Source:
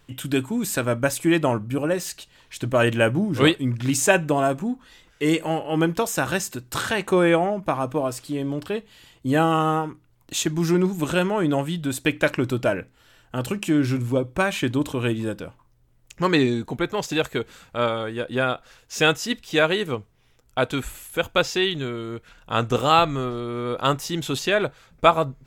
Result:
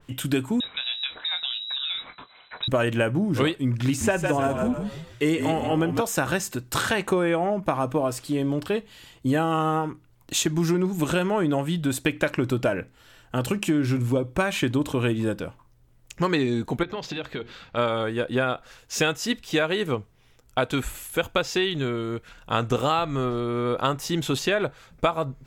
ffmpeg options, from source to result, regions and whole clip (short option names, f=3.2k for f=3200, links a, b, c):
-filter_complex "[0:a]asettb=1/sr,asplit=3[a][b][c];[a]atrim=end=0.604[d];[b]atrim=start=0.6:end=2.68,asetpts=PTS-STARTPTS,afade=t=in:d=0.004:c=qsin,afade=t=out:st=2.076:d=0.004:c=qsin,asplit=2[e][f];[f]adelay=23,volume=-11dB[g];[e][g]amix=inputs=2:normalize=0,atrim=end_sample=91728,acompressor=threshold=-27dB:ratio=4:attack=3.2:release=140:knee=1:detection=peak,lowpass=f=3.4k:t=q:w=0.5098,lowpass=f=3.4k:t=q:w=0.6013,lowpass=f=3.4k:t=q:w=0.9,lowpass=f=3.4k:t=q:w=2.563,afreqshift=-4000[h];[c]atrim=start=2.676[i];[d][h]acrossfade=d=0.004:c1=hsin:c2=qsin[j];[j][i]acrossfade=d=0.004:c1=qsin:c2=hsin,asettb=1/sr,asplit=3[k][l][m];[k]atrim=end=3.854[n];[l]atrim=start=3.85:end=6.01,asetpts=PTS-STARTPTS,afade=t=in:d=0.004:c=qsin,afade=t=out:st=2.156:d=0.004:c=qsin,asplit=5[o][p][q][r][s];[p]adelay=154,afreqshift=-43,volume=-8dB[t];[q]adelay=308,afreqshift=-86,volume=-16.9dB[u];[r]adelay=462,afreqshift=-129,volume=-25.7dB[v];[s]adelay=616,afreqshift=-172,volume=-34.6dB[w];[o][t][u][v][w]amix=inputs=5:normalize=0,atrim=end_sample=95256,acrossover=split=2500[x][y];[y]acompressor=threshold=-29dB:ratio=4:attack=1:release=60[z];[x][z]amix=inputs=2:normalize=0[aa];[m]atrim=start=6.006[ab];[n][aa]acrossfade=d=0.004:c1=hsin:c2=qsin[ac];[ac][ab]acrossfade=d=0.004:c1=qsin:c2=hsin,asettb=1/sr,asplit=3[ad][ae][af];[ad]atrim=end=16.834[ag];[ae]atrim=start=16.83:end=17.77,asetpts=PTS-STARTPTS,afade=t=in:d=0.004:c=qsin,afade=t=out:st=0.936:d=0.004:c=qsin,highshelf=f=6k:t=q:w=1.5:g=-13.5,acompressor=threshold=-29dB:ratio=12:attack=3.2:release=140:knee=1:detection=peak,bandreject=f=60:t=h:w=6,bandreject=f=120:t=h:w=6,bandreject=f=180:t=h:w=6,bandreject=f=240:t=h:w=6,bandreject=f=300:t=h:w=6,bandreject=f=360:t=h:w=6[ah];[af]atrim=start=17.766[ai];[ag][ah]acrossfade=d=0.004:c1=hsin:c2=qsin[aj];[aj][ai]acrossfade=d=0.004:c1=qsin:c2=hsin,acompressor=threshold=-21dB:ratio=10,adynamicequalizer=threshold=0.01:dfrequency=2500:dqfactor=0.7:tfrequency=2500:tqfactor=0.7:attack=5:release=100:ratio=0.375:range=1.5:mode=cutabove:tftype=highshelf,volume=2.5dB"